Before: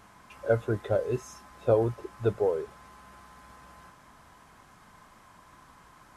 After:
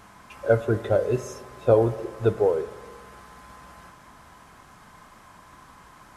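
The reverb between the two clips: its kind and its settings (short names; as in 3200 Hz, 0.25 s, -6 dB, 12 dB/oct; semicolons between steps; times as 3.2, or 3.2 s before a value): spring tank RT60 1.5 s, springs 40/55 ms, chirp 50 ms, DRR 13.5 dB; gain +5 dB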